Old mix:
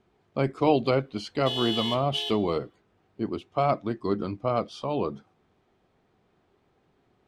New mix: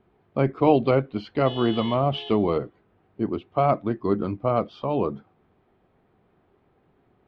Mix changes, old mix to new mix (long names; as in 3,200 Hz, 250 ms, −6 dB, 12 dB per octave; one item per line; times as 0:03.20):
speech +4.5 dB
master: add high-frequency loss of the air 350 metres